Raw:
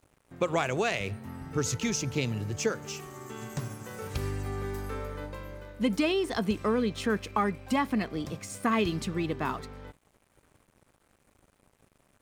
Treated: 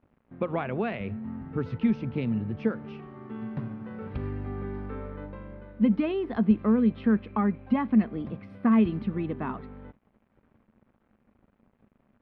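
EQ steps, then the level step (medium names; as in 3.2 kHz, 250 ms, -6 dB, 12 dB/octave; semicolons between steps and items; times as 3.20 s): boxcar filter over 6 samples; distance through air 420 m; peaking EQ 220 Hz +11.5 dB 0.41 oct; -1.0 dB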